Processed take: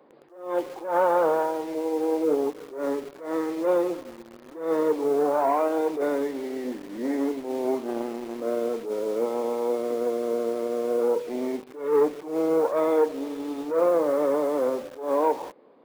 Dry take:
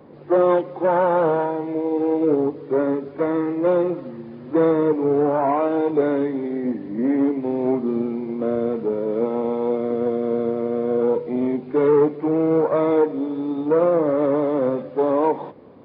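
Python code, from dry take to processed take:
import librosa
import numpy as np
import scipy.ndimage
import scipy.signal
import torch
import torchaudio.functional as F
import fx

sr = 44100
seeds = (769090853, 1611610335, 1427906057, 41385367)

p1 = fx.self_delay(x, sr, depth_ms=0.38, at=(7.81, 8.36))
p2 = scipy.signal.sosfilt(scipy.signal.butter(2, 360.0, 'highpass', fs=sr, output='sos'), p1)
p3 = fx.quant_dither(p2, sr, seeds[0], bits=6, dither='none')
p4 = p2 + (p3 * librosa.db_to_amplitude(-3.5))
p5 = fx.attack_slew(p4, sr, db_per_s=110.0)
y = p5 * librosa.db_to_amplitude(-6.5)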